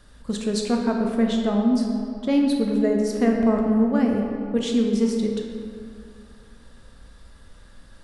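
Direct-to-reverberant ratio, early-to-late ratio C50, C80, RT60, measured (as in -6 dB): 1.0 dB, 2.5 dB, 4.0 dB, 2.4 s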